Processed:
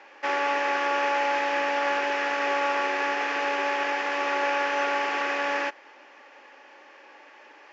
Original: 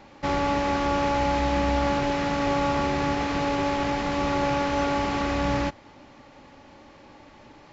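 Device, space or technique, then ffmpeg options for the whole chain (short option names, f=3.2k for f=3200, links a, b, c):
phone speaker on a table: -af "highpass=f=400:w=0.5412,highpass=f=400:w=1.3066,equalizer=f=640:t=q:w=4:g=-3,equalizer=f=1.7k:t=q:w=4:g=9,equalizer=f=2.6k:t=q:w=4:g=6,equalizer=f=4k:t=q:w=4:g=-7,lowpass=f=6.6k:w=0.5412,lowpass=f=6.6k:w=1.3066"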